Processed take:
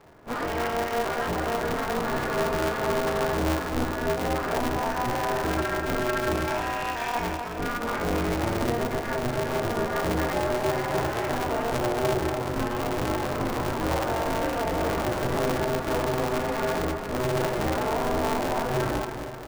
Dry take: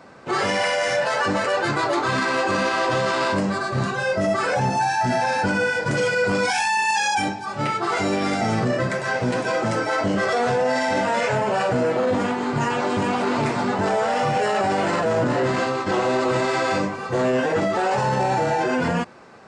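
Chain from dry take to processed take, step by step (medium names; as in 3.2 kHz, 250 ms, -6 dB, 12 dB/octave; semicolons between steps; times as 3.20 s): low-pass 1.1 kHz 6 dB/octave; in parallel at -11 dB: integer overflow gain 15.5 dB; on the sum: feedback delay 253 ms, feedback 58%, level -8 dB; on a send at -4 dB: reverberation RT60 0.35 s, pre-delay 4 ms; on the sum: polarity switched at an audio rate 120 Hz; trim -9 dB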